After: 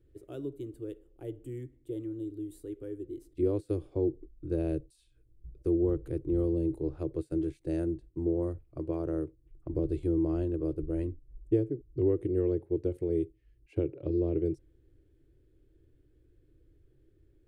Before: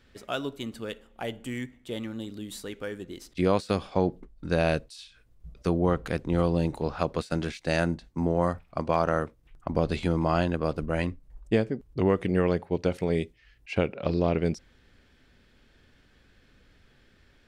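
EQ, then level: EQ curve 140 Hz 0 dB, 210 Hz -26 dB, 320 Hz +7 dB, 760 Hz -20 dB, 1300 Hz -23 dB, 3100 Hz -23 dB, 5500 Hz -25 dB, 9100 Hz -11 dB; -1.5 dB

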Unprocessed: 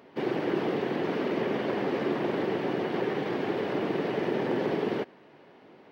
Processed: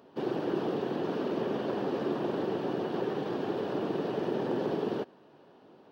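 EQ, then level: bell 2100 Hz -13.5 dB 0.44 oct; -2.5 dB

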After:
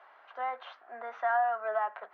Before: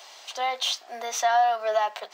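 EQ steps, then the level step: ladder low-pass 1700 Hz, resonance 55%; +1.0 dB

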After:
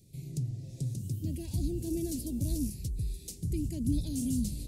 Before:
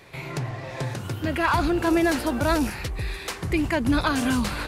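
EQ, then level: Chebyshev band-stop 190–7700 Hz, order 2; -3.0 dB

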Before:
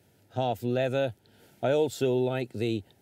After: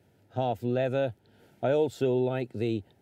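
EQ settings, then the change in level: high shelf 3400 Hz -10 dB; 0.0 dB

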